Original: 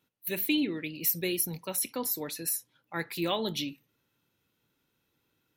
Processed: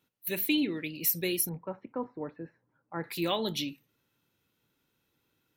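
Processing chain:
0:01.49–0:03.04: low-pass filter 1,400 Hz 24 dB per octave

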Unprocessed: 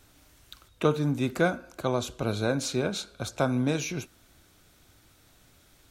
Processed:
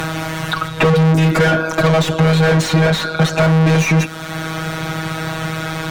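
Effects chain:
low shelf with overshoot 190 Hz +7 dB, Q 1.5
phases set to zero 160 Hz
mid-hump overdrive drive 42 dB, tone 1,700 Hz, clips at −7 dBFS
multiband upward and downward compressor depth 70%
level +2.5 dB

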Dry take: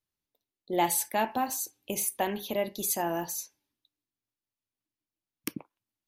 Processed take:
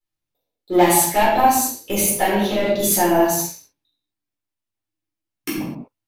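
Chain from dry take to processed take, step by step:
0:02.30–0:02.78: low-pass filter 9,300 Hz → 5,300 Hz 12 dB per octave
leveller curve on the samples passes 2
convolution reverb, pre-delay 6 ms, DRR −9.5 dB
level −5 dB

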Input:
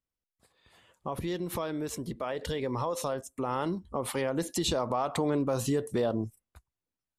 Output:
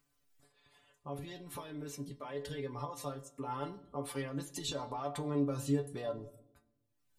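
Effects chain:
upward compression, threshold −52 dBFS
stiff-string resonator 140 Hz, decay 0.21 s, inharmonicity 0.002
on a send: convolution reverb RT60 0.90 s, pre-delay 35 ms, DRR 16 dB
on the sum: level +1 dB

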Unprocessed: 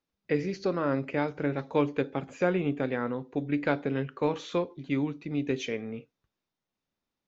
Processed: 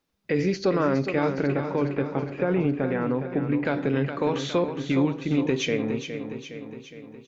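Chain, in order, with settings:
brickwall limiter −22.5 dBFS, peak gain reduction 10 dB
0:01.46–0:03.65: high-frequency loss of the air 410 metres
repeating echo 413 ms, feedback 57%, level −9 dB
level +8.5 dB

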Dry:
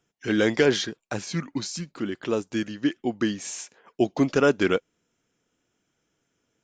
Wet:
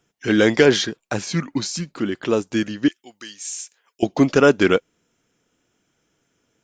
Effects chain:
0:02.88–0:04.03: first-order pre-emphasis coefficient 0.97
level +6 dB

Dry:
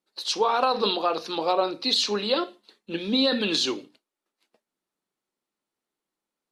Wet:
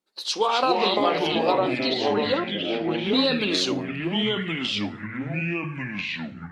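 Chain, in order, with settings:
0:01.57–0:03.06: treble cut that deepens with the level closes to 2,700 Hz, closed at −20.5 dBFS
delay with pitch and tempo change per echo 180 ms, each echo −4 semitones, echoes 3

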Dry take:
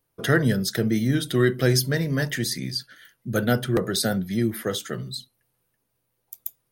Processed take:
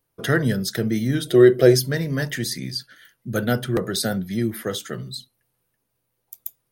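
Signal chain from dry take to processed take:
gain on a spectral selection 0:01.26–0:01.75, 340–740 Hz +10 dB

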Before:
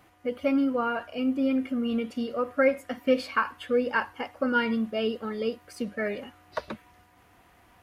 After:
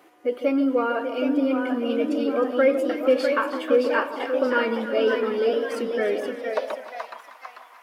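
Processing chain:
in parallel at −2 dB: brickwall limiter −23.5 dBFS, peak gain reduction 12 dB
on the sum: delay with pitch and tempo change per echo 797 ms, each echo +1 semitone, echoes 3, each echo −6 dB
delay that swaps between a low-pass and a high-pass 156 ms, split 1,100 Hz, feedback 67%, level −8.5 dB
high-pass filter sweep 360 Hz → 1,000 Hz, 0:06.34–0:07.19
level −2.5 dB

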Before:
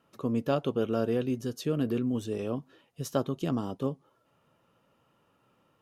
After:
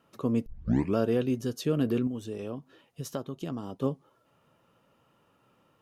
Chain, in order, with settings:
0:00.46: tape start 0.51 s
0:02.07–0:03.83: downward compressor 2.5 to 1, threshold −37 dBFS, peak gain reduction 10.5 dB
level +2 dB

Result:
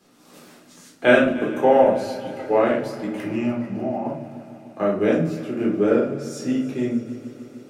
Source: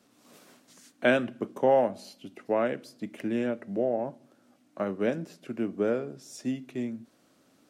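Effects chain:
0:01.24–0:01.83: high-pass filter 130 Hz
0:03.25–0:04.06: phaser with its sweep stopped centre 2,400 Hz, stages 8
echo machine with several playback heads 150 ms, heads first and second, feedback 72%, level −20 dB
rectangular room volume 490 cubic metres, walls furnished, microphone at 3.9 metres
level +2 dB

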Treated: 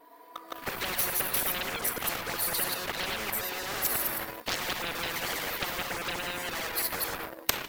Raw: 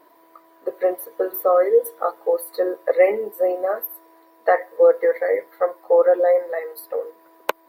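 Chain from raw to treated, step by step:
delay that plays each chunk backwards 110 ms, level −2 dB
0:00.96–0:01.44: high-shelf EQ 9,600 Hz +10.5 dB
0:04.95–0:05.70: high-pass filter 360 Hz 24 dB per octave
far-end echo of a speakerphone 150 ms, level −23 dB
rectangular room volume 510 cubic metres, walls mixed, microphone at 0.34 metres
0:03.35–0:03.85: downward compressor 8 to 1, threshold −23 dBFS, peak gain reduction 9 dB
flanger swept by the level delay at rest 4.3 ms, full sweep at −9.5 dBFS
automatic gain control gain up to 15 dB
leveller curve on the samples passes 2
brickwall limiter −4.5 dBFS, peak gain reduction 4 dB
every bin compressed towards the loudest bin 10 to 1

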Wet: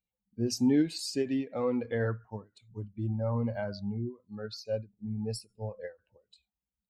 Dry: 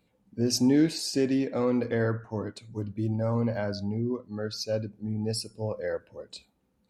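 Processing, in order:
spectral dynamics exaggerated over time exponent 1.5
every ending faded ahead of time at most 250 dB per second
level −1.5 dB

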